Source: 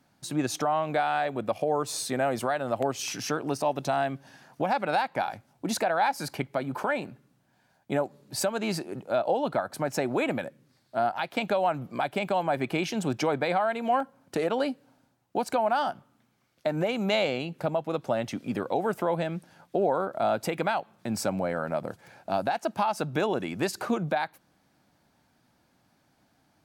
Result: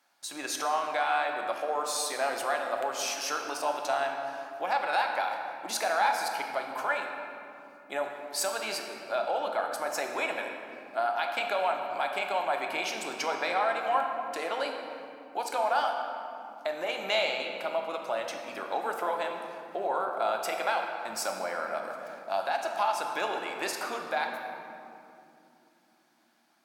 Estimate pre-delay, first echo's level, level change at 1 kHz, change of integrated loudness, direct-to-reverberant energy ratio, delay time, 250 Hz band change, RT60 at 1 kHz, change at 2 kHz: 3 ms, no echo audible, −0.5 dB, −2.0 dB, 2.0 dB, no echo audible, −13.5 dB, 2.5 s, +2.0 dB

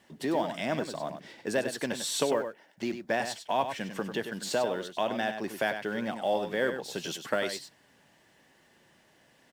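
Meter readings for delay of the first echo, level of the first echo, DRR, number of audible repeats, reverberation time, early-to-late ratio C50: 97 ms, −8.5 dB, no reverb audible, 1, no reverb audible, no reverb audible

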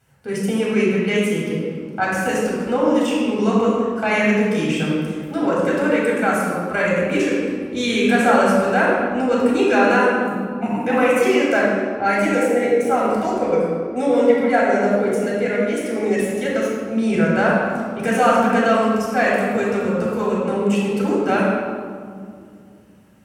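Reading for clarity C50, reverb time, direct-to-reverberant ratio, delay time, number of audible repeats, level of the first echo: −1.5 dB, 2.2 s, −6.0 dB, no echo audible, no echo audible, no echo audible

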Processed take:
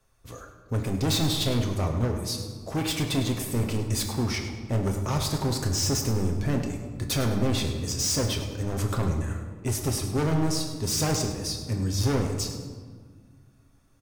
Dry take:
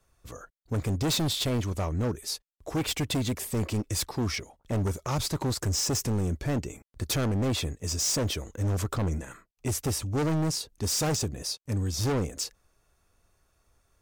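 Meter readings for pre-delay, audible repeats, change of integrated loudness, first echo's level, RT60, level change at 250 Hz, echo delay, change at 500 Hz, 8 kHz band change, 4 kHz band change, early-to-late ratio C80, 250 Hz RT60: 7 ms, 1, +2.0 dB, −12.5 dB, 1.7 s, +2.5 dB, 103 ms, +2.0 dB, +1.0 dB, +1.5 dB, 7.0 dB, 2.5 s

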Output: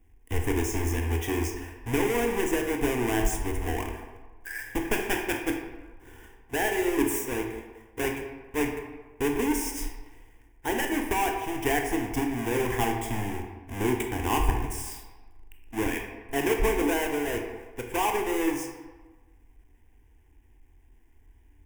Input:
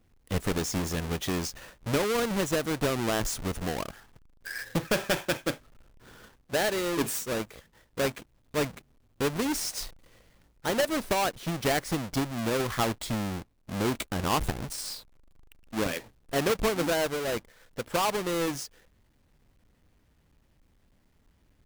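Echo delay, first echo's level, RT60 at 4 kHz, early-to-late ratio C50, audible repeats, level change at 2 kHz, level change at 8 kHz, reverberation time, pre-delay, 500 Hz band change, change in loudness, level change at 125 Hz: no echo audible, no echo audible, 0.75 s, 5.0 dB, no echo audible, +2.0 dB, −0.5 dB, 1.3 s, 17 ms, +0.5 dB, +1.0 dB, +0.5 dB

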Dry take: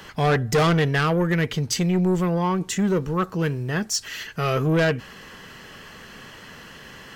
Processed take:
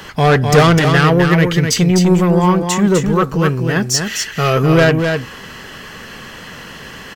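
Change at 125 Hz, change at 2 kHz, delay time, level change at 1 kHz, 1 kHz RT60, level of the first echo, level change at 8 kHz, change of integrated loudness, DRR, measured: +9.5 dB, +9.5 dB, 253 ms, +9.5 dB, no reverb audible, −5.5 dB, +9.5 dB, +9.5 dB, no reverb audible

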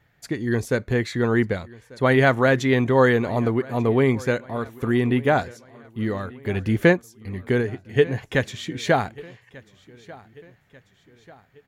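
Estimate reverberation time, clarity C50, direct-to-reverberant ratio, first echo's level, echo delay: no reverb audible, no reverb audible, no reverb audible, −22.0 dB, 1,191 ms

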